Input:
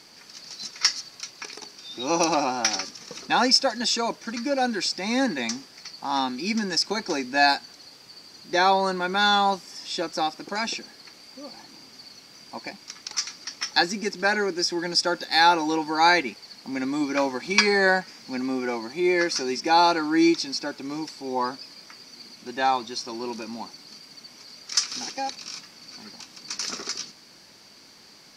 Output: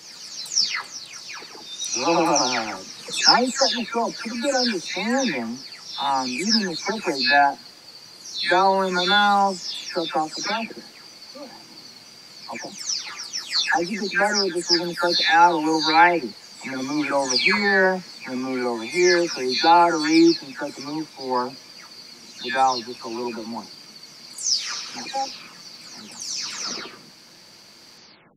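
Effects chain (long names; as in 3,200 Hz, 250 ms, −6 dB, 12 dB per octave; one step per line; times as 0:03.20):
every frequency bin delayed by itself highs early, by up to 391 ms
level +4 dB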